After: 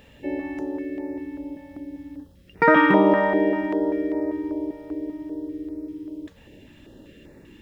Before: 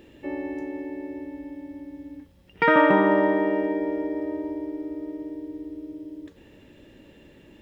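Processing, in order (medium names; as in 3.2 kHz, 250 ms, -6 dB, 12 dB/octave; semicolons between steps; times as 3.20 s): step-sequenced notch 5.1 Hz 340–3100 Hz; trim +4 dB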